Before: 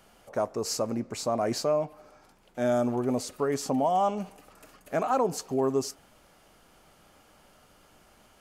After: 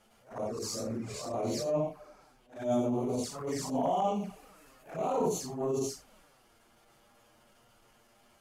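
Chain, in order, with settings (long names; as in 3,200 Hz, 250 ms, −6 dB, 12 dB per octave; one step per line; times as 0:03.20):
random phases in long frames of 200 ms
flanger swept by the level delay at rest 9.6 ms, full sweep at −25 dBFS
transient designer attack −12 dB, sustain +3 dB
level −1.5 dB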